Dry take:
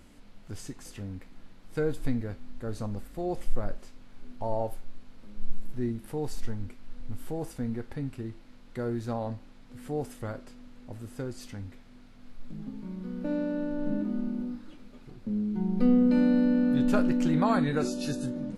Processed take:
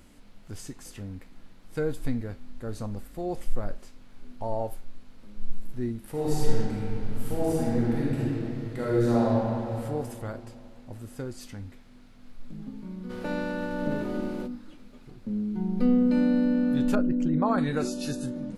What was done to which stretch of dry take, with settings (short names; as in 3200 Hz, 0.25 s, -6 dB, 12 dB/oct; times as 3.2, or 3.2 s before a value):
6.1–9.79 reverb throw, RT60 2.7 s, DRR -8 dB
13.09–14.46 spectral limiter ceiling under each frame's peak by 18 dB
16.95–17.58 formant sharpening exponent 1.5
whole clip: high shelf 9000 Hz +5 dB